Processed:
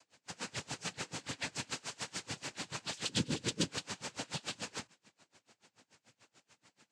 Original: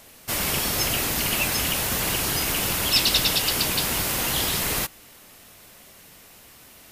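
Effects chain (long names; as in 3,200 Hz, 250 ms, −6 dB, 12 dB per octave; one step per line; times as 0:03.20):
0:01.68–0:02.21: compressing power law on the bin magnitudes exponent 0.34
0:03.08–0:03.68: low shelf with overshoot 420 Hz +13.5 dB, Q 1.5
cochlear-implant simulation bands 8
tremolo with a sine in dB 6.9 Hz, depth 28 dB
level −9 dB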